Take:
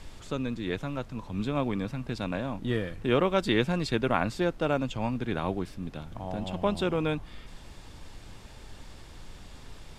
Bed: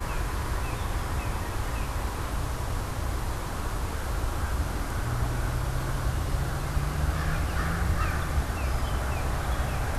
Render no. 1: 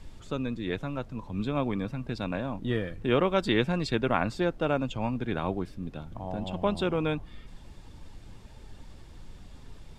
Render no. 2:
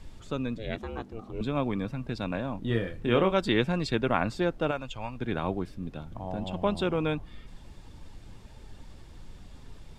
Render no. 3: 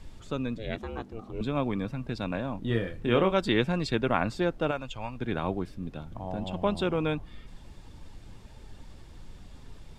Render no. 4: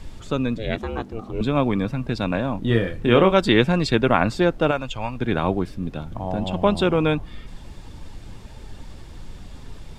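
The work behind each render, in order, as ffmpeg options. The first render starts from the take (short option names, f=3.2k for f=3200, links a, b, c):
-af "afftdn=nr=7:nf=-48"
-filter_complex "[0:a]asettb=1/sr,asplit=3[a][b][c];[a]atrim=end=0.584[d];[b]atrim=start=0.58:end=1.41,asetpts=PTS-STARTPTS,afade=t=in:d=0.004:c=qsin,afade=t=out:st=0.826:d=0.004:c=qsin,aeval=exprs='val(0)*sin(2*PI*220*n/s)':c=same[e];[c]atrim=start=1.406[f];[d][e]acrossfade=d=0.004:c1=hsin:c2=qsin[g];[g][f]acrossfade=d=0.004:c1=qsin:c2=hsin,asettb=1/sr,asplit=3[h][i][j];[h]atrim=end=2.674[k];[i]atrim=start=2.67:end=3.33,asetpts=PTS-STARTPTS,afade=t=in:d=0.004:c=qsin,afade=t=out:st=0.656:d=0.004:c=qsin,asplit=2[l][m];[m]adelay=26,volume=-7dB[n];[l][n]amix=inputs=2:normalize=0,atrim=end_sample=29106[o];[j]atrim=start=3.326[p];[k][o]acrossfade=d=0.004:c1=hsin:c2=qsin[q];[q][p]acrossfade=d=0.004:c1=qsin:c2=hsin,asettb=1/sr,asplit=3[r][s][t];[r]atrim=end=4.714[u];[s]atrim=start=4.71:end=5.21,asetpts=PTS-STARTPTS,afade=t=in:d=0.004:c=qsin,afade=t=out:st=0.496:d=0.004:c=qsin,equalizer=f=230:w=0.52:g=-12.5[v];[t]atrim=start=5.206[w];[u][v]acrossfade=d=0.004:c1=hsin:c2=qsin[x];[x][w]acrossfade=d=0.004:c1=qsin:c2=hsin"
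-af anull
-af "volume=8.5dB,alimiter=limit=-2dB:level=0:latency=1"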